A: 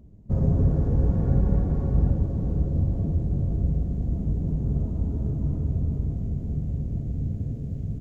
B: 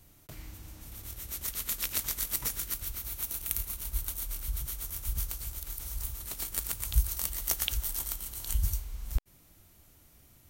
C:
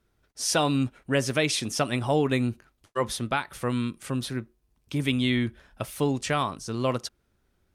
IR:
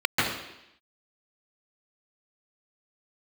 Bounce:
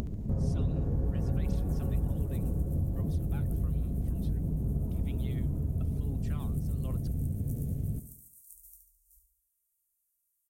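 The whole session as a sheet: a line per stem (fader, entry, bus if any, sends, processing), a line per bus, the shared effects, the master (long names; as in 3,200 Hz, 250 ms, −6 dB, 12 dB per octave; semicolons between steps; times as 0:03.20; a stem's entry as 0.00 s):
+3.0 dB, 0.00 s, no send, echo send −16 dB, upward compression, threshold −26 dBFS
−13.0 dB, 0.00 s, no send, echo send −6.5 dB, inverse Chebyshev band-stop filter 130–3,000 Hz, stop band 60 dB; flanger 0.37 Hz, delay 9.6 ms, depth 9.3 ms, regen +50%; meter weighting curve D
−18.5 dB, 0.00 s, no send, no echo send, phase shifter 1.3 Hz, delay 1.7 ms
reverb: not used
echo: repeating echo 71 ms, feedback 44%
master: downward compressor 2.5 to 1, threshold −32 dBFS, peak gain reduction 13 dB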